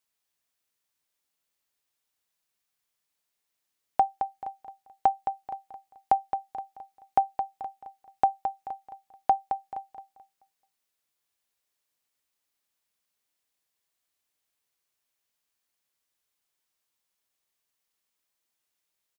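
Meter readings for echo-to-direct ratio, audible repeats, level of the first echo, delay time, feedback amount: -7.5 dB, 3, -8.0 dB, 0.217 s, 32%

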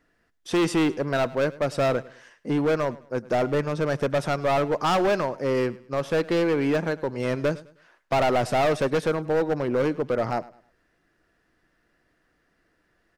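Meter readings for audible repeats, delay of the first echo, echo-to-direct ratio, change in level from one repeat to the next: 2, 0.104 s, -19.5 dB, -10.0 dB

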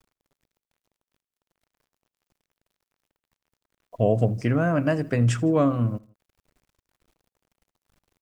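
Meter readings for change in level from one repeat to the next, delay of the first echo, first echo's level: -5.5 dB, 80 ms, -23.0 dB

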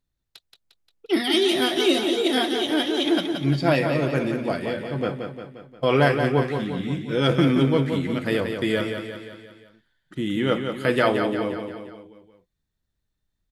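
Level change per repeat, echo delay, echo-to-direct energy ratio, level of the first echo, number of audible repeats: -5.5 dB, 0.176 s, -5.0 dB, -6.5 dB, 5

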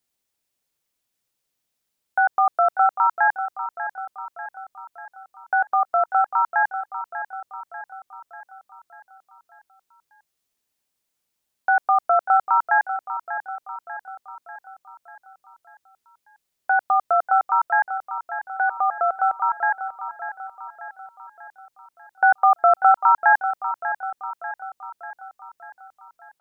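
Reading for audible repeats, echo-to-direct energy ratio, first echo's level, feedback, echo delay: 5, -9.5 dB, -11.0 dB, 54%, 0.592 s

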